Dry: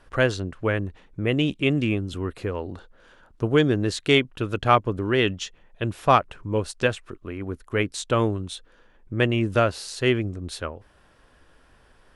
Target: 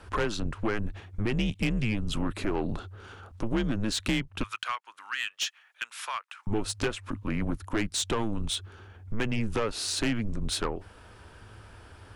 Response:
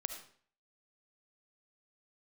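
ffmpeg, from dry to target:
-filter_complex "[0:a]acompressor=threshold=-26dB:ratio=20,asettb=1/sr,asplit=3[a][b][c];[a]atrim=end=4.434[d];[b]atrim=start=4.43:end=6.47,asetpts=PTS-STARTPTS,afade=t=in:d=0.004:c=qsin,afade=t=out:st=2.036:d=0.004:c=qsin,highpass=f=1.3k:w=0.5412,highpass=f=1.3k:w=1.3066[e];[c]atrim=start=6.466[f];[d][e]acrossfade=d=0.004:c1=hsin:c2=qsin[g];[g][f]acrossfade=d=0.004:c1=qsin:c2=hsin,afreqshift=-110,asoftclip=type=tanh:threshold=-27.5dB,volume=6.5dB"

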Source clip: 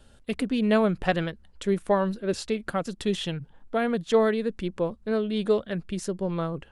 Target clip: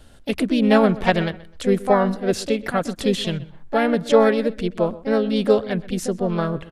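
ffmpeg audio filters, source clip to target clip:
-filter_complex "[0:a]asplit=2[a][b];[b]asetrate=55563,aresample=44100,atempo=0.793701,volume=-7dB[c];[a][c]amix=inputs=2:normalize=0,asplit=2[d][e];[e]adelay=127,lowpass=f=3.4k:p=1,volume=-18.5dB,asplit=2[f][g];[g]adelay=127,lowpass=f=3.4k:p=1,volume=0.29[h];[d][f][h]amix=inputs=3:normalize=0,volume=5.5dB"

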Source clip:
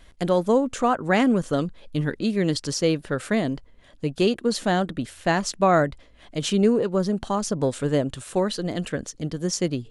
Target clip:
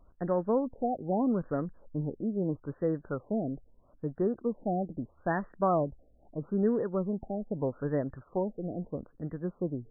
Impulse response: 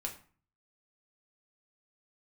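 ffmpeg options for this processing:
-af "afftfilt=real='re*lt(b*sr/1024,780*pow(2000/780,0.5+0.5*sin(2*PI*0.78*pts/sr)))':imag='im*lt(b*sr/1024,780*pow(2000/780,0.5+0.5*sin(2*PI*0.78*pts/sr)))':win_size=1024:overlap=0.75,volume=-8dB"

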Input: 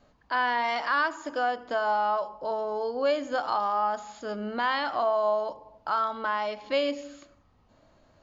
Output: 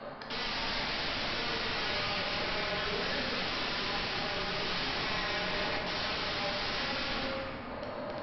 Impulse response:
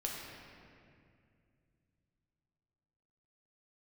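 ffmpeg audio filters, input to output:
-filter_complex "[0:a]asplit=2[a][b];[b]highpass=f=720:p=1,volume=31dB,asoftclip=type=tanh:threshold=-14dB[c];[a][c]amix=inputs=2:normalize=0,lowpass=f=1.9k:p=1,volume=-6dB,asplit=2[d][e];[e]acompressor=threshold=-34dB:ratio=8,volume=0dB[f];[d][f]amix=inputs=2:normalize=0,equalizer=f=3.2k:w=2.3:g=-2.5,aresample=11025,aeval=exprs='(mod(20*val(0)+1,2)-1)/20':c=same,aresample=44100,afreqshift=-33[g];[1:a]atrim=start_sample=2205[h];[g][h]afir=irnorm=-1:irlink=0,volume=-5dB"

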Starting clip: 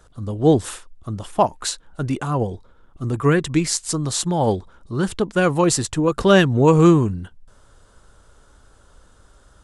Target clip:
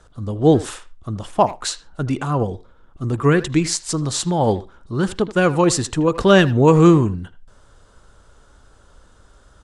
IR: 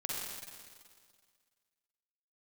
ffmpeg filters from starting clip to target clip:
-filter_complex "[0:a]lowpass=8.9k,asplit=2[a][b];[b]adelay=80,highpass=300,lowpass=3.4k,asoftclip=type=hard:threshold=-11.5dB,volume=-15dB[c];[a][c]amix=inputs=2:normalize=0,asplit=2[d][e];[1:a]atrim=start_sample=2205,afade=t=out:st=0.2:d=0.01,atrim=end_sample=9261,lowpass=6.2k[f];[e][f]afir=irnorm=-1:irlink=0,volume=-25.5dB[g];[d][g]amix=inputs=2:normalize=0,volume=1dB"

